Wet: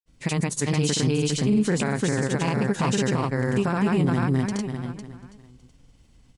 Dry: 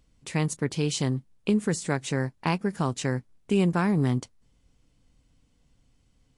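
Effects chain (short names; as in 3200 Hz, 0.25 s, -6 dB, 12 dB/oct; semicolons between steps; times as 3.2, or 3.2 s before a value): feedback echo 0.354 s, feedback 31%, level -3 dB; grains, pitch spread up and down by 0 st; limiter -22 dBFS, peak gain reduction 11.5 dB; gain +8 dB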